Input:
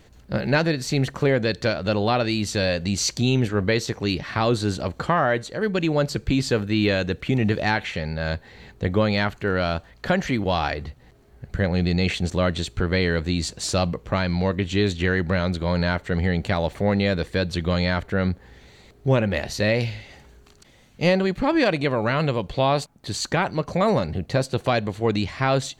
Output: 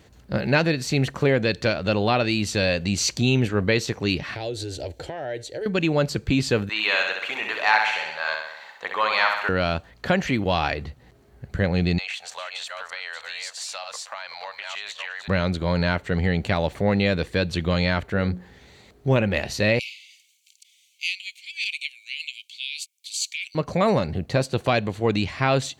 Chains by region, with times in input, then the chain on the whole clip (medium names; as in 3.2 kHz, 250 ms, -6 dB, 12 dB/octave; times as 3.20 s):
4.35–5.66 s: compression 5:1, threshold -23 dBFS + static phaser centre 480 Hz, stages 4
6.69–9.49 s: resonant high-pass 1 kHz, resonance Q 2.6 + flutter echo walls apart 11.1 m, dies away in 0.84 s
11.98–15.28 s: chunks repeated in reverse 308 ms, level -7.5 dB + inverse Chebyshev high-pass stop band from 360 Hz + compression 10:1, threshold -29 dBFS
18.06–19.16 s: de-esser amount 90% + hum notches 60/120/180/240/300/360/420/480/540 Hz
19.79–23.55 s: rippled Chebyshev high-pass 2.2 kHz, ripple 3 dB + treble shelf 5 kHz +5 dB
whole clip: high-pass 49 Hz; dynamic bell 2.6 kHz, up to +5 dB, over -42 dBFS, Q 3.6